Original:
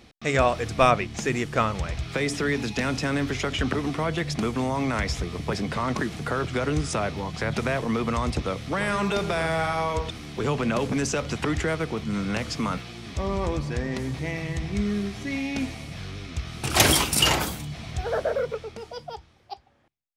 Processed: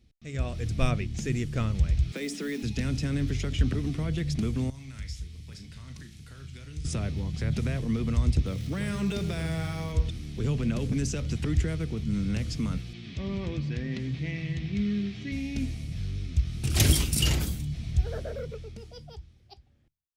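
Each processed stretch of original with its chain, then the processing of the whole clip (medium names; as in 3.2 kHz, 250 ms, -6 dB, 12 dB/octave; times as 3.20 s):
2.12–2.63 s: steep high-pass 190 Hz 48 dB/octave + modulation noise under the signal 25 dB
4.70–6.85 s: amplifier tone stack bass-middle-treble 5-5-5 + band-stop 1.2 kHz, Q 23 + flutter echo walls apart 6.4 m, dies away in 0.27 s
8.46–9.92 s: jump at every zero crossing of -39.5 dBFS + high-pass 75 Hz
12.93–15.32 s: Chebyshev band-pass 150–2900 Hz + treble shelf 2.1 kHz +10 dB
whole clip: amplifier tone stack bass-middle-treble 10-0-1; level rider gain up to 11.5 dB; trim +3.5 dB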